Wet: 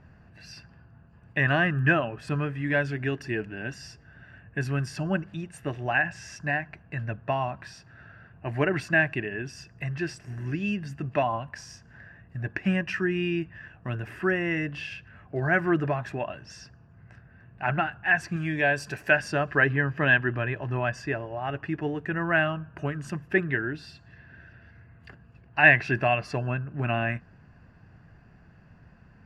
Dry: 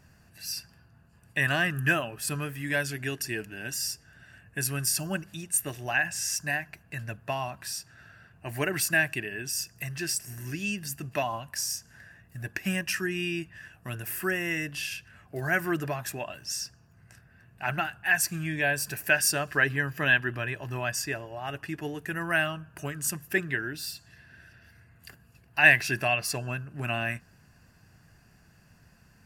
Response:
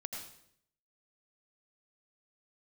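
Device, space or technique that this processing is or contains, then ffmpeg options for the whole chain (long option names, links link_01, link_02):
phone in a pocket: -filter_complex "[0:a]asettb=1/sr,asplit=3[link_01][link_02][link_03];[link_01]atrim=end=18.364[link_04];[link_02]atrim=start=18.36:end=19.11,asetpts=PTS-STARTPTS,afade=type=in:duration=0.004:curve=qsin,afade=type=out:start_time=0.746:duration=0.004:curve=qsin,bass=frequency=250:gain=-4,treble=frequency=4000:gain=10[link_05];[link_03]atrim=start=19.106[link_06];[link_04][link_05]acrossfade=duration=0.004:curve1=hsin:curve2=qsin[link_07];[link_07][link_06]acrossfade=duration=0.004:curve1=qsin:curve2=hsin,lowpass=3200,highshelf=frequency=2300:gain=-10,volume=5.5dB"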